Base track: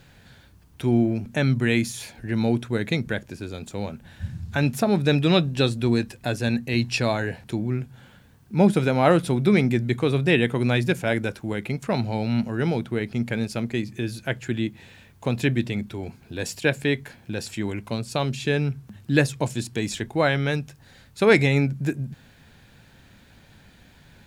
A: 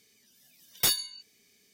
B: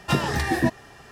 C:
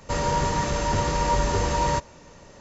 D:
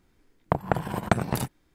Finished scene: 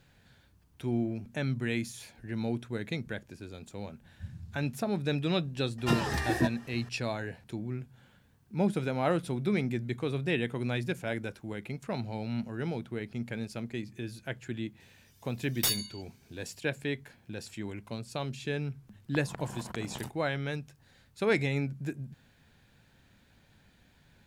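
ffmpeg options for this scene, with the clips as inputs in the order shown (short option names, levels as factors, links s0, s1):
-filter_complex "[0:a]volume=0.299[s0];[4:a]acompressor=threshold=0.0501:ratio=6:attack=3.2:release=140:knee=1:detection=peak[s1];[2:a]atrim=end=1.11,asetpts=PTS-STARTPTS,volume=0.473,afade=t=in:d=0.004:c=hsin,afade=t=out:st=1.106:d=0.004:c=hsin,adelay=5780[s2];[1:a]atrim=end=1.73,asetpts=PTS-STARTPTS,volume=0.668,afade=t=in:d=0.004:c=hsin,afade=t=out:st=1.726:d=0.004:c=hsin,adelay=14800[s3];[s1]atrim=end=1.74,asetpts=PTS-STARTPTS,volume=0.316,afade=t=in:d=0.004:c=hsin,afade=t=out:st=1.736:d=0.004:c=hsin,adelay=18630[s4];[s0][s2][s3][s4]amix=inputs=4:normalize=0"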